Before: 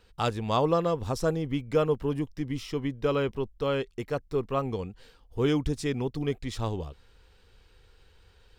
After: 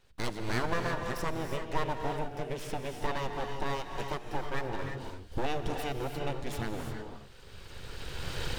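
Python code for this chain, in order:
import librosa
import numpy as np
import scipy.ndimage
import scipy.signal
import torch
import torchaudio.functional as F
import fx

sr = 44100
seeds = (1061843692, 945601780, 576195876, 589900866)

y = fx.recorder_agc(x, sr, target_db=-18.0, rise_db_per_s=17.0, max_gain_db=30)
y = np.abs(y)
y = fx.rev_gated(y, sr, seeds[0], gate_ms=370, shape='rising', drr_db=4.0)
y = y * 10.0 ** (-4.0 / 20.0)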